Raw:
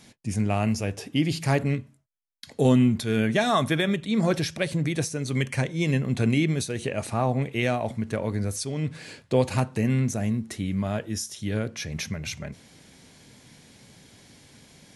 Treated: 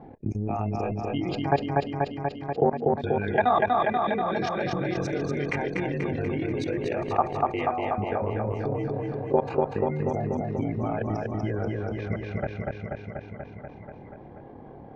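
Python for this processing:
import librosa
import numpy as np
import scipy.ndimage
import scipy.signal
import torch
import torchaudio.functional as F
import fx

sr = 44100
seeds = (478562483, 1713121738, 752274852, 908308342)

y = fx.frame_reverse(x, sr, frame_ms=57.0)
y = fx.spec_gate(y, sr, threshold_db=-25, keep='strong')
y = fx.env_lowpass(y, sr, base_hz=600.0, full_db=-25.5)
y = fx.peak_eq(y, sr, hz=850.0, db=12.5, octaves=1.8)
y = y + 0.34 * np.pad(y, (int(2.5 * sr / 1000.0), 0))[:len(y)]
y = fx.level_steps(y, sr, step_db=17)
y = fx.transient(y, sr, attack_db=6, sustain_db=-11)
y = fx.air_absorb(y, sr, metres=180.0)
y = fx.echo_feedback(y, sr, ms=242, feedback_pct=58, wet_db=-3.5)
y = fx.env_flatten(y, sr, amount_pct=50)
y = F.gain(torch.from_numpy(y), -6.0).numpy()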